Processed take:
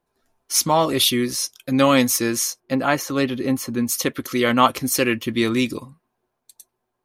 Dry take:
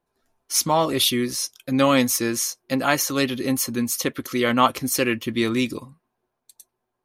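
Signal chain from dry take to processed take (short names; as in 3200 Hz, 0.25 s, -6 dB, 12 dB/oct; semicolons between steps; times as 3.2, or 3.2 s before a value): 2.6–3.89 high shelf 3100 Hz -10.5 dB; gain +2 dB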